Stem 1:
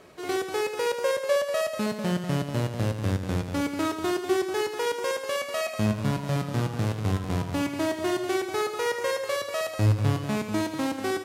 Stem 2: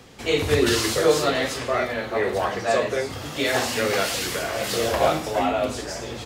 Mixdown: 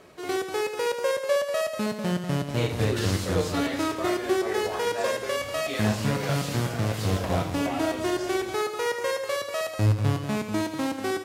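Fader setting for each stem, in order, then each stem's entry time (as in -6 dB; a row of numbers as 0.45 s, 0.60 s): 0.0 dB, -9.5 dB; 0.00 s, 2.30 s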